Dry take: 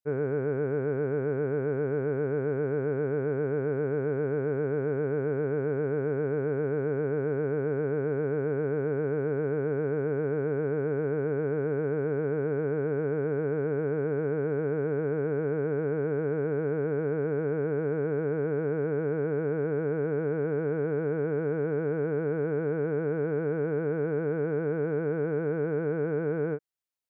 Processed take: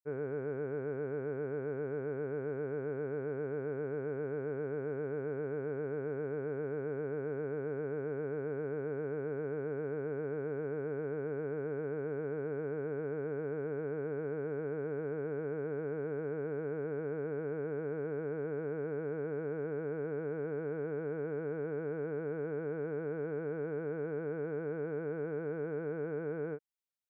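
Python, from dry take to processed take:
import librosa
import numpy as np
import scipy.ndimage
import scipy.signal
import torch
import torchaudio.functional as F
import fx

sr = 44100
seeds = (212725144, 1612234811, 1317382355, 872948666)

y = fx.low_shelf(x, sr, hz=150.0, db=-6.5)
y = y * librosa.db_to_amplitude(-7.5)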